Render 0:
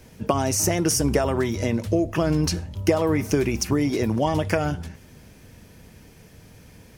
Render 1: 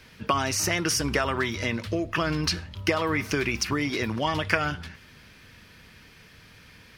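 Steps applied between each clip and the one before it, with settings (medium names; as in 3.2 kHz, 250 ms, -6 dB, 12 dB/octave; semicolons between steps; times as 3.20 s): high-order bell 2.3 kHz +12 dB 2.5 oct; trim -6.5 dB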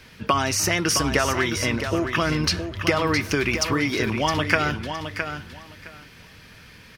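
feedback delay 664 ms, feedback 18%, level -8 dB; trim +3.5 dB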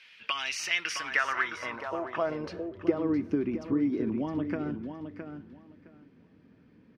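band-pass sweep 2.7 kHz -> 270 Hz, 0.72–3.20 s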